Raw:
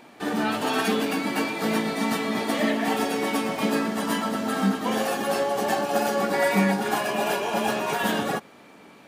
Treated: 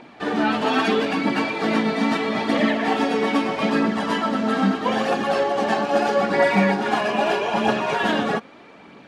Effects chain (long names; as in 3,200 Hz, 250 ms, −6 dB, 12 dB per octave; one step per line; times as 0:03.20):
low-pass filter 4,300 Hz 12 dB per octave
phase shifter 0.78 Hz, delay 4.8 ms, feedback 35%
level +3.5 dB